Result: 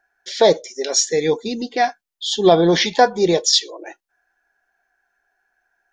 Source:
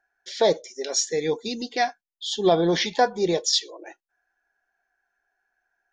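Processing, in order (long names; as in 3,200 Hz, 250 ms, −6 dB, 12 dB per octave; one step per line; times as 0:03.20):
0:01.44–0:01.84: high-shelf EQ 2,400 Hz −8 dB
level +6.5 dB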